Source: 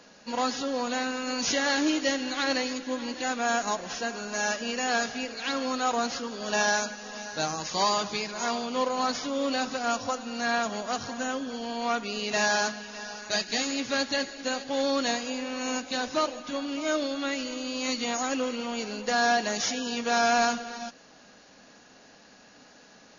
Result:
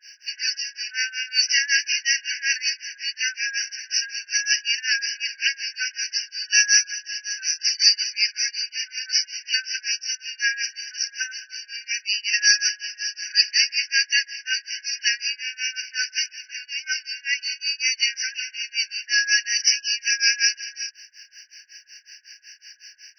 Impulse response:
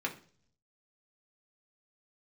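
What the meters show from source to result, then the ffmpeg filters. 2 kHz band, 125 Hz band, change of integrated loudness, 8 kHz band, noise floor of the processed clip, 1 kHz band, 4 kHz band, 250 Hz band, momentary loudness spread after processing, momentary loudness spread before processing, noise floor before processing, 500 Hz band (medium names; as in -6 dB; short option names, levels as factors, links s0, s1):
+7.5 dB, under -40 dB, +6.5 dB, no reading, -54 dBFS, under -35 dB, +10.5 dB, under -40 dB, 11 LU, 8 LU, -54 dBFS, under -40 dB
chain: -filter_complex "[0:a]crystalizer=i=8:c=0,acrossover=split=1100[s0][s1];[s0]aeval=exprs='val(0)*(1-1/2+1/2*cos(2*PI*5.4*n/s))':c=same[s2];[s1]aeval=exprs='val(0)*(1-1/2-1/2*cos(2*PI*5.4*n/s))':c=same[s3];[s2][s3]amix=inputs=2:normalize=0,afftfilt=real='re*eq(mod(floor(b*sr/1024/1500),2),1)':imag='im*eq(mod(floor(b*sr/1024/1500),2),1)':win_size=1024:overlap=0.75,volume=1.78"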